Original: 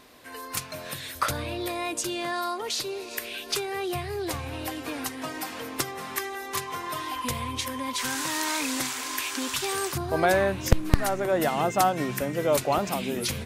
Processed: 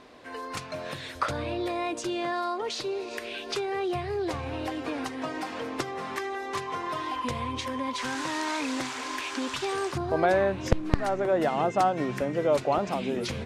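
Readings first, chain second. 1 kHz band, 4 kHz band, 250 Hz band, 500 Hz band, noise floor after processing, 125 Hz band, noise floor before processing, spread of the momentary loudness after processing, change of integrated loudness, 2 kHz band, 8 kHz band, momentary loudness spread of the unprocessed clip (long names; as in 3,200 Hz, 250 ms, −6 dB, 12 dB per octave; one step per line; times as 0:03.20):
−0.5 dB, −4.5 dB, +0.5 dB, +0.5 dB, −40 dBFS, −3.0 dB, −40 dBFS, 9 LU, −1.5 dB, −2.5 dB, −10.5 dB, 9 LU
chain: parametric band 500 Hz +5 dB 2.6 octaves
in parallel at 0 dB: downward compressor, threshold −29 dBFS, peak gain reduction 18.5 dB
on the sum: high-frequency loss of the air 84 metres
level −6.5 dB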